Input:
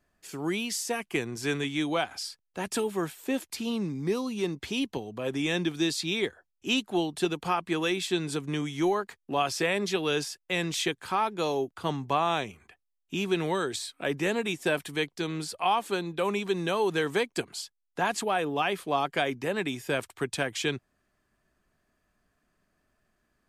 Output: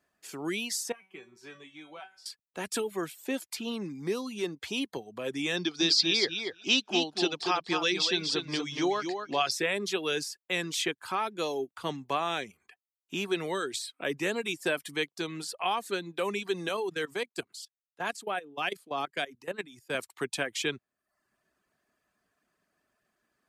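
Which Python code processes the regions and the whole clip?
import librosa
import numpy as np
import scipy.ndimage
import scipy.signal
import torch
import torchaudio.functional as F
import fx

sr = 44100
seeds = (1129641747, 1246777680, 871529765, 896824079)

y = fx.chain(x, sr, fx.lowpass(hz=3000.0, slope=6),
    fx.comb_fb(f0_hz=190.0, decay_s=0.53, harmonics='all', damping=0.0, mix_pct=90),
    fx.band_squash(depth_pct=40), at=(0.92, 2.26))
y = fx.chain(y, sr, fx.lowpass_res(hz=5000.0, q=5.0),
    fx.peak_eq(hz=790.0, db=3.0, octaves=1.0),
    fx.echo_feedback(ms=236, feedback_pct=16, wet_db=-6), at=(5.57, 9.51))
y = fx.chain(y, sr, fx.level_steps(step_db=14),
    fx.band_widen(depth_pct=70), at=(16.69, 19.95))
y = fx.highpass(y, sr, hz=290.0, slope=6)
y = fx.dereverb_blind(y, sr, rt60_s=0.55)
y = fx.dynamic_eq(y, sr, hz=850.0, q=1.8, threshold_db=-43.0, ratio=4.0, max_db=-5)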